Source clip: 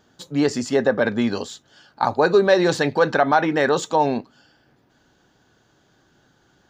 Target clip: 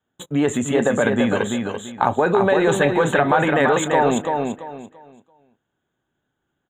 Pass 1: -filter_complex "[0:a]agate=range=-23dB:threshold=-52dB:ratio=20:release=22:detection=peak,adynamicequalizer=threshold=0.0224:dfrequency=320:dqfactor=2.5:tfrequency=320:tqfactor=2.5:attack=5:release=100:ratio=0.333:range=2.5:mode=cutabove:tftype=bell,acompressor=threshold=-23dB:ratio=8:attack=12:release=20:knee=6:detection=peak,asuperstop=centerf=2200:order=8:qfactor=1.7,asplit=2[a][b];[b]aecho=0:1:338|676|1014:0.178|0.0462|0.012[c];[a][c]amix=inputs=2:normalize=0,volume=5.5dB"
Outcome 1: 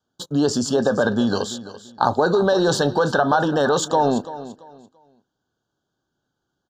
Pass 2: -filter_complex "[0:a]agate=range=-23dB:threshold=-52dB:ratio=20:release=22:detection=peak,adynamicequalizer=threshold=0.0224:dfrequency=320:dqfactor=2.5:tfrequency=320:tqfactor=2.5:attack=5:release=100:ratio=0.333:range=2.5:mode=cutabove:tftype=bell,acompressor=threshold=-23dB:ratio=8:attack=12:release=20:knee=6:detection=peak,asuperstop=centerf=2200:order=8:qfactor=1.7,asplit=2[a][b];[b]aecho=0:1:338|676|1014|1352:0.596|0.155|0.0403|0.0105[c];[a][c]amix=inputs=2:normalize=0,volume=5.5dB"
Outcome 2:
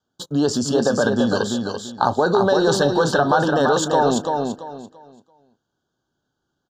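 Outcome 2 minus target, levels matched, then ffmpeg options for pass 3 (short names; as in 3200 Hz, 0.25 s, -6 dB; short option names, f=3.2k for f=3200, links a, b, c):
4000 Hz band +5.0 dB
-filter_complex "[0:a]agate=range=-23dB:threshold=-52dB:ratio=20:release=22:detection=peak,adynamicequalizer=threshold=0.0224:dfrequency=320:dqfactor=2.5:tfrequency=320:tqfactor=2.5:attack=5:release=100:ratio=0.333:range=2.5:mode=cutabove:tftype=bell,acompressor=threshold=-23dB:ratio=8:attack=12:release=20:knee=6:detection=peak,asuperstop=centerf=5000:order=8:qfactor=1.7,asplit=2[a][b];[b]aecho=0:1:338|676|1014|1352:0.596|0.155|0.0403|0.0105[c];[a][c]amix=inputs=2:normalize=0,volume=5.5dB"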